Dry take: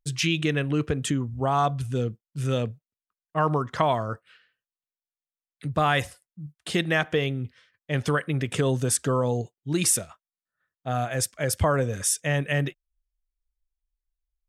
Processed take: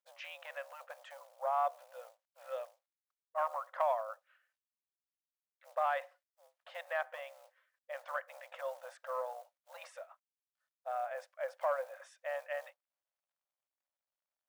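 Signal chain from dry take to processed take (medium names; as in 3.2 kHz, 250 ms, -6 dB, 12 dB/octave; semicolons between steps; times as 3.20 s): octave divider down 1 oct, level +3 dB; low-pass 1.3 kHz 12 dB/octave; saturation -10.5 dBFS, distortion -26 dB; companded quantiser 8-bit; brick-wall FIR high-pass 510 Hz; trim -7 dB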